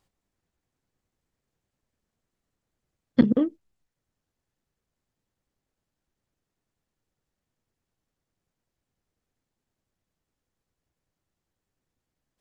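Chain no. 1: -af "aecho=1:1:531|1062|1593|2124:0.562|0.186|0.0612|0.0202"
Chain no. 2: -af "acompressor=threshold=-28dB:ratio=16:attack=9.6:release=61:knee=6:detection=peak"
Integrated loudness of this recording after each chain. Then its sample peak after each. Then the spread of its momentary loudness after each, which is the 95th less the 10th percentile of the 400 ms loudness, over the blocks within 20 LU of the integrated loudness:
−26.0, −34.5 LKFS; −5.5, −16.5 dBFS; 18, 6 LU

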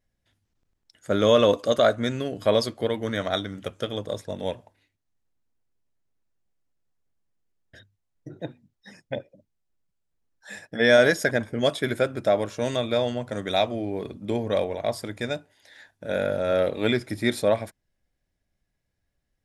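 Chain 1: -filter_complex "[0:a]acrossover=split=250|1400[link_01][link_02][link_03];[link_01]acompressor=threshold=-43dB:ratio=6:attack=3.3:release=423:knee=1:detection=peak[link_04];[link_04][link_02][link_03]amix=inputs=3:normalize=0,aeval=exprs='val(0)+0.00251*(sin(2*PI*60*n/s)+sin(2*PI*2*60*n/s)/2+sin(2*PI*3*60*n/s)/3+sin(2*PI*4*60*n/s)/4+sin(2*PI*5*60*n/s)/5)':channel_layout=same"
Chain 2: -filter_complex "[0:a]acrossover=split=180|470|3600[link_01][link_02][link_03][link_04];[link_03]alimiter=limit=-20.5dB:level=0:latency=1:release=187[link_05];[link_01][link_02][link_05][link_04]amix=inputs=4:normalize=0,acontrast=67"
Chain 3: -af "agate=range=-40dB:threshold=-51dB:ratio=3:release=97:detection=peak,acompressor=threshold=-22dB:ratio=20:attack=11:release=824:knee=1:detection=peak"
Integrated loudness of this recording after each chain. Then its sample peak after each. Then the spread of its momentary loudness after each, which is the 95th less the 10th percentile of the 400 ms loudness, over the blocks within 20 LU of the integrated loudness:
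−25.5, −21.0, −31.0 LKFS; −6.0, −5.5, −13.0 dBFS; 17, 13, 8 LU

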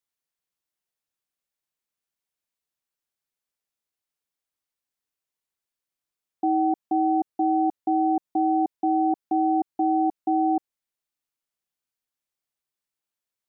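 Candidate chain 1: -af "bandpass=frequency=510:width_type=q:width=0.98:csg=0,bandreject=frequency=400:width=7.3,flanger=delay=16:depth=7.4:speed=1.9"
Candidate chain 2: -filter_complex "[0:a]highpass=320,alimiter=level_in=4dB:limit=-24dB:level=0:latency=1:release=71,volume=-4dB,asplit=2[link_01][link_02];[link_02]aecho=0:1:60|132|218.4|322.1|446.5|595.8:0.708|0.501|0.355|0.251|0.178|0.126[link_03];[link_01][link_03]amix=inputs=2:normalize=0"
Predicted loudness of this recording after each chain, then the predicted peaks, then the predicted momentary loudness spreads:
−30.0, −35.5 LKFS; −18.5, −26.5 dBFS; 2, 5 LU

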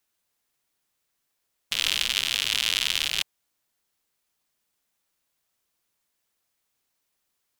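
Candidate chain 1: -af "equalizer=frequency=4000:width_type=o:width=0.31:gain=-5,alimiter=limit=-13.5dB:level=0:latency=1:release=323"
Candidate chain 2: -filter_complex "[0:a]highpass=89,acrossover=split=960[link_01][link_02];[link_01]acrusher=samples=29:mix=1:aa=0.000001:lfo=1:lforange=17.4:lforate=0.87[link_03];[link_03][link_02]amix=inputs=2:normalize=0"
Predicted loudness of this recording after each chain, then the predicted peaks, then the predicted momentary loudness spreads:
−32.5, −24.0 LKFS; −13.5, −6.0 dBFS; 5, 7 LU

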